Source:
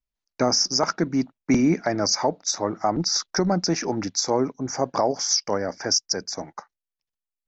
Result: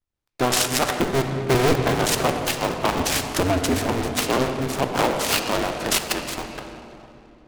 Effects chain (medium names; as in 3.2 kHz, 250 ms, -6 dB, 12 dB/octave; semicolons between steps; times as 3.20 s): cycle switcher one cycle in 2, inverted; on a send at -3.5 dB: reverberation RT60 2.9 s, pre-delay 3 ms; on the sum: delay time shaken by noise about 1.6 kHz, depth 0.058 ms